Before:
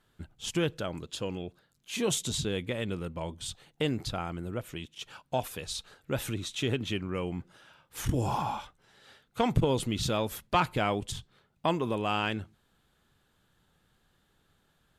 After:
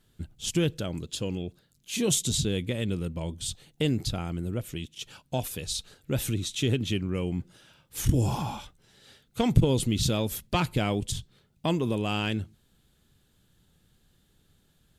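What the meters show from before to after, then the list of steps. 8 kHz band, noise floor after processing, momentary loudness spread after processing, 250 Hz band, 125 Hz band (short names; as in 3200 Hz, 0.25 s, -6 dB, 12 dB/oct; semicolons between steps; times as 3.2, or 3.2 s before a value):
+6.0 dB, -67 dBFS, 12 LU, +4.5 dB, +6.0 dB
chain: bell 1100 Hz -12 dB 2.5 oct; gain +7 dB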